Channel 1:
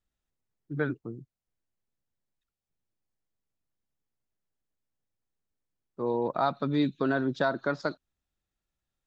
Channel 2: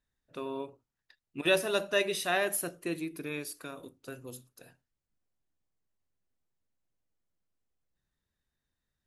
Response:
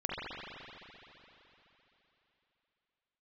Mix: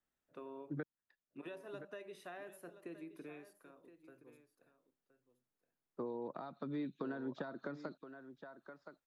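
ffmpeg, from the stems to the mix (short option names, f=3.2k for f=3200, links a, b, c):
-filter_complex "[0:a]acrossover=split=3400[a][b];[b]acompressor=threshold=-55dB:ratio=4:attack=1:release=60[c];[a][c]amix=inputs=2:normalize=0,highshelf=f=2.7k:g=11.5,acompressor=threshold=-34dB:ratio=8,volume=-1.5dB,asplit=3[d][e][f];[d]atrim=end=0.83,asetpts=PTS-STARTPTS,afade=t=out:st=0.826:d=0.004:c=hsin[g];[e]atrim=start=0.83:end=2.03,asetpts=PTS-STARTPTS,volume=0[h];[f]atrim=start=2.03,asetpts=PTS-STARTPTS,afade=t=in:d=0.004:c=hsin[i];[g][h][i]concat=n=3:v=0:a=1,asplit=2[j][k];[k]volume=-13.5dB[l];[1:a]acompressor=threshold=-36dB:ratio=6,volume=-8.5dB,afade=t=out:st=3.3:d=0.27:silence=0.398107,asplit=2[m][n];[n]volume=-14dB[o];[l][o]amix=inputs=2:normalize=0,aecho=0:1:1020:1[p];[j][m][p]amix=inputs=3:normalize=0,acrossover=split=160 2100:gain=0.224 1 0.2[q][r][s];[q][r][s]amix=inputs=3:normalize=0,acrossover=split=420|3000[t][u][v];[u]acompressor=threshold=-46dB:ratio=6[w];[t][w][v]amix=inputs=3:normalize=0"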